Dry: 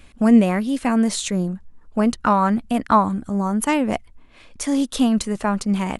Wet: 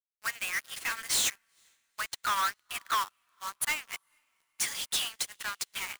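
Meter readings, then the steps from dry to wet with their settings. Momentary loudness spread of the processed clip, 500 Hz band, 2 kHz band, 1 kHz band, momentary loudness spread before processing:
12 LU, -27.5 dB, -2.0 dB, -12.5 dB, 9 LU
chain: HPF 1500 Hz 24 dB/oct; companded quantiser 2-bit; on a send: diffused feedback echo 0.459 s, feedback 47%, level -14.5 dB; on the sum: upward expander 2.5:1, over -44 dBFS

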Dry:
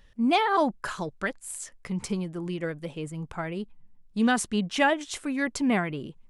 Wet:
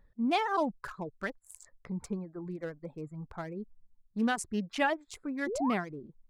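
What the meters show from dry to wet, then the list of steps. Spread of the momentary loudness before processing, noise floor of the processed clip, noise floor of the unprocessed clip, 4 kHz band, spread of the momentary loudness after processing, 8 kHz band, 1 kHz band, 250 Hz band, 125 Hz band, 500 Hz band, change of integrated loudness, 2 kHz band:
12 LU, -69 dBFS, -56 dBFS, -8.5 dB, 13 LU, -9.5 dB, -6.0 dB, -6.5 dB, -7.5 dB, -5.5 dB, -6.0 dB, -7.0 dB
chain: Wiener smoothing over 15 samples; reverb removal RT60 0.68 s; painted sound rise, 5.46–5.74, 320–1400 Hz -29 dBFS; gain -5.5 dB

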